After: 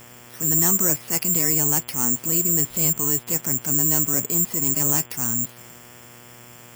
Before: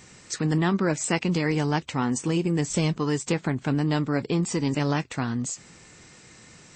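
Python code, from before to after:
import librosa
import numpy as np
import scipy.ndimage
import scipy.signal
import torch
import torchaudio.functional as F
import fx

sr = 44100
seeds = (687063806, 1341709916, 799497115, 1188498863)

y = (np.kron(scipy.signal.resample_poly(x, 1, 6), np.eye(6)[0]) * 6)[:len(x)]
y = fx.transient(y, sr, attack_db=-7, sustain_db=2)
y = fx.dmg_buzz(y, sr, base_hz=120.0, harmonics=29, level_db=-45.0, tilt_db=-3, odd_only=False)
y = y * 10.0 ** (-3.0 / 20.0)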